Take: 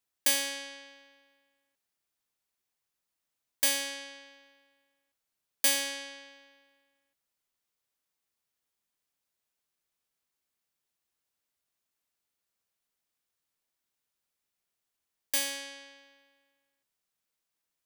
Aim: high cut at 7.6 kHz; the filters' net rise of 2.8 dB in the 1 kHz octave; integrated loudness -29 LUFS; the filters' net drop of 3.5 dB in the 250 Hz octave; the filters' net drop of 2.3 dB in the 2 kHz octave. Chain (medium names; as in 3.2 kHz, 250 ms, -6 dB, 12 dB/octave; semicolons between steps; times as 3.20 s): low-pass 7.6 kHz; peaking EQ 250 Hz -4 dB; peaking EQ 1 kHz +4.5 dB; peaking EQ 2 kHz -4 dB; trim +4.5 dB